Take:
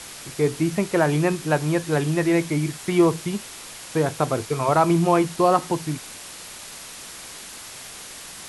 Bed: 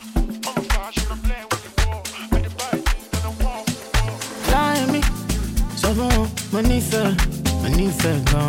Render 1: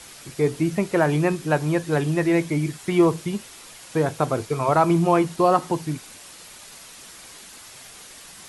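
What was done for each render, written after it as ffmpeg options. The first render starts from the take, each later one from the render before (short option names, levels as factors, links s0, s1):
-af "afftdn=nr=6:nf=-39"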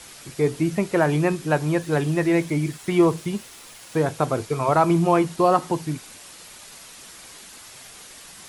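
-filter_complex "[0:a]asettb=1/sr,asplit=3[s0][s1][s2];[s0]atrim=end=1.814[s3];[s1]atrim=start=1.81:end=4.03,asetpts=PTS-STARTPTS,afade=t=in:d=0.004:c=qsin,afade=t=out:st=2.216:d=0.004:c=qsin,aeval=exprs='val(0)*gte(abs(val(0)),0.00501)':c=same[s4];[s2]atrim=start=4.026[s5];[s3][s4]acrossfade=d=0.004:c1=hsin:c2=qsin[s6];[s6][s5]acrossfade=d=0.004:c1=qsin:c2=hsin"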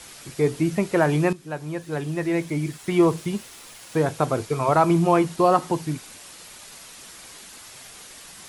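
-filter_complex "[0:a]asplit=2[s0][s1];[s0]atrim=end=1.33,asetpts=PTS-STARTPTS,afade=t=out:st=1.326:d=0.004:c=hsin:silence=0.211349[s2];[s1]atrim=start=1.33,asetpts=PTS-STARTPTS,afade=t=in:d=1.83:silence=0.211349[s3];[s2][s3]concat=n=2:v=0:a=1"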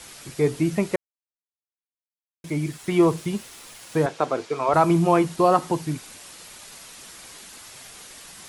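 -filter_complex "[0:a]asettb=1/sr,asplit=3[s0][s1][s2];[s0]atrim=end=4.064[s3];[s1]atrim=start=4.06:end=4.74,asetpts=PTS-STARTPTS,afade=t=in:d=0.004:c=qsin,afade=t=out:st=0.676:d=0.004:c=qsin,highpass=290,lowpass=5700[s4];[s2]atrim=start=4.736[s5];[s3][s4]acrossfade=d=0.004:c1=hsin:c2=qsin[s6];[s6][s5]acrossfade=d=0.004:c1=qsin:c2=hsin,asplit=3[s7][s8][s9];[s7]atrim=end=0.96,asetpts=PTS-STARTPTS,afade=t=out:st=0.956:d=0.004:c=hsin[s10];[s8]atrim=start=0.96:end=2.44,asetpts=PTS-STARTPTS,volume=0[s11];[s9]atrim=start=2.44,asetpts=PTS-STARTPTS,afade=t=in:d=0.004:c=hsin[s12];[s10][s11][s12]concat=n=3:v=0:a=1"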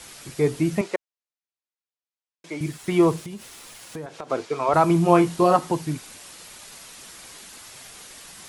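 -filter_complex "[0:a]asettb=1/sr,asplit=3[s0][s1][s2];[s0]atrim=end=0.814[s3];[s1]atrim=start=0.81:end=2.61,asetpts=PTS-STARTPTS,afade=t=in:d=0.004:c=qsin,afade=t=out:st=1.796:d=0.004:c=qsin,highpass=390,lowpass=7100[s4];[s2]atrim=start=2.606[s5];[s3][s4]acrossfade=d=0.004:c1=hsin:c2=qsin[s6];[s6][s5]acrossfade=d=0.004:c1=qsin:c2=hsin,asettb=1/sr,asplit=3[s7][s8][s9];[s7]atrim=end=3.214[s10];[s8]atrim=start=3.21:end=4.3,asetpts=PTS-STARTPTS,afade=t=in:d=0.004:c=qsin,afade=t=out:st=1.086:d=0.004:c=qsin,acompressor=threshold=0.0251:ratio=6:attack=3.2:release=140:knee=1:detection=peak[s11];[s9]atrim=start=4.296[s12];[s10][s11]acrossfade=d=0.004:c1=hsin:c2=qsin[s13];[s13][s12]acrossfade=d=0.004:c1=qsin:c2=hsin,asettb=1/sr,asplit=3[s14][s15][s16];[s14]atrim=end=5.064[s17];[s15]atrim=start=5.06:end=5.56,asetpts=PTS-STARTPTS,afade=t=in:d=0.004:c=qsin,afade=t=out:st=0.496:d=0.004:c=qsin,asplit=2[s18][s19];[s19]adelay=23,volume=0.562[s20];[s18][s20]amix=inputs=2:normalize=0,atrim=end_sample=22050[s21];[s16]atrim=start=5.556[s22];[s17][s21]acrossfade=d=0.004:c1=hsin:c2=qsin[s23];[s23][s22]acrossfade=d=0.004:c1=qsin:c2=hsin"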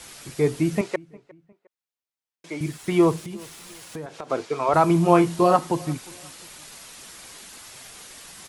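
-filter_complex "[0:a]asplit=2[s0][s1];[s1]adelay=356,lowpass=f=2200:p=1,volume=0.0708,asplit=2[s2][s3];[s3]adelay=356,lowpass=f=2200:p=1,volume=0.36[s4];[s0][s2][s4]amix=inputs=3:normalize=0"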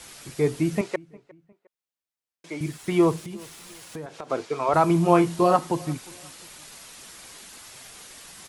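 -af "volume=0.841"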